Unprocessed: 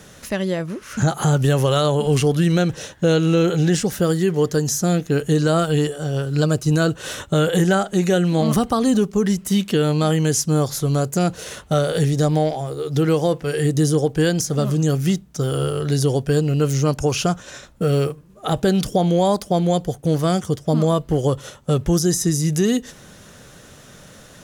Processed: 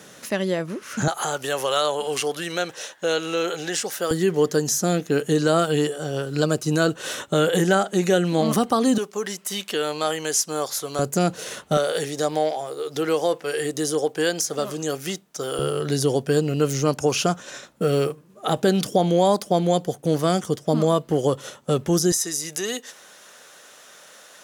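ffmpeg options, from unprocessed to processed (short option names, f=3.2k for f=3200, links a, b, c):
-af "asetnsamples=n=441:p=0,asendcmd='1.08 highpass f 590;4.11 highpass f 220;8.98 highpass f 560;10.99 highpass f 180;11.77 highpass f 430;15.59 highpass f 200;22.12 highpass f 620',highpass=200"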